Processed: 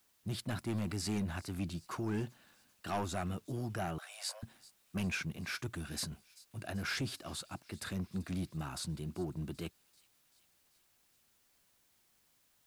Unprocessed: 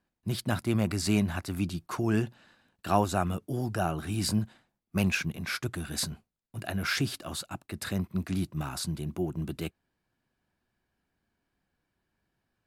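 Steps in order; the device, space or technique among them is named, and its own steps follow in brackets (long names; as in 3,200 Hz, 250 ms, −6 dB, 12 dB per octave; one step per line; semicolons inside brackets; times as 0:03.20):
compact cassette (soft clipping −24 dBFS, distortion −11 dB; low-pass filter 12,000 Hz 12 dB per octave; tape wow and flutter; white noise bed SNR 32 dB)
0:03.98–0:04.43: Butterworth high-pass 530 Hz 72 dB per octave
delay with a high-pass on its return 388 ms, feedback 62%, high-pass 3,400 Hz, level −19 dB
level −5.5 dB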